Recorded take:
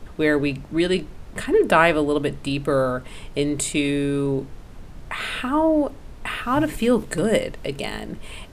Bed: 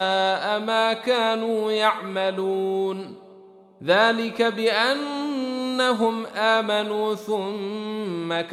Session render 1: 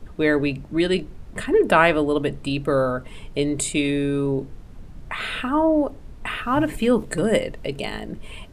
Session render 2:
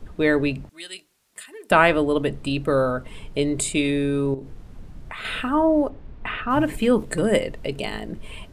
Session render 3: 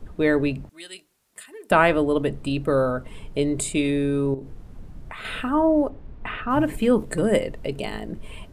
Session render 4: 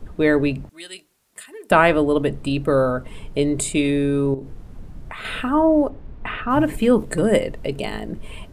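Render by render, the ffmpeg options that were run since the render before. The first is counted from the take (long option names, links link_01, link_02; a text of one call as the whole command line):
ffmpeg -i in.wav -af "afftdn=noise_reduction=6:noise_floor=-41" out.wav
ffmpeg -i in.wav -filter_complex "[0:a]asettb=1/sr,asplit=3[link_01][link_02][link_03];[link_01]atrim=end=0.694[link_04];[link_02]atrim=start=0.69:end=1.71,asetpts=PTS-STARTPTS,afade=type=in:duration=0.004:curve=qsin,afade=type=out:start_time=1.016:duration=0.004:curve=qsin,aderivative[link_05];[link_03]atrim=start=1.706[link_06];[link_04][link_05]acrossfade=duration=0.004:curve1=hsin:curve2=qsin[link_07];[link_07][link_06]acrossfade=duration=0.004:curve1=qsin:curve2=hsin,asettb=1/sr,asplit=3[link_08][link_09][link_10];[link_08]atrim=end=4.344[link_11];[link_09]atrim=start=4.34:end=5.25,asetpts=PTS-STARTPTS,afade=type=in:duration=0.004:curve=qsin,afade=type=out:start_time=0.906:duration=0.004:curve=qsin,acompressor=threshold=-31dB:ratio=4:attack=3.2:release=140:knee=1:detection=peak[link_12];[link_10]atrim=start=5.246[link_13];[link_11][link_12]acrossfade=duration=0.004:curve1=hsin:curve2=qsin[link_14];[link_14][link_13]acrossfade=duration=0.004:curve1=qsin:curve2=hsin,asplit=3[link_15][link_16][link_17];[link_15]afade=type=out:start_time=5.88:duration=0.02[link_18];[link_16]lowpass=3200,afade=type=in:start_time=5.88:duration=0.02,afade=type=out:start_time=6.49:duration=0.02[link_19];[link_17]afade=type=in:start_time=6.49:duration=0.02[link_20];[link_18][link_19][link_20]amix=inputs=3:normalize=0" out.wav
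ffmpeg -i in.wav -af "equalizer=frequency=3700:width_type=o:width=2.8:gain=-4" out.wav
ffmpeg -i in.wav -af "volume=3dB,alimiter=limit=-1dB:level=0:latency=1" out.wav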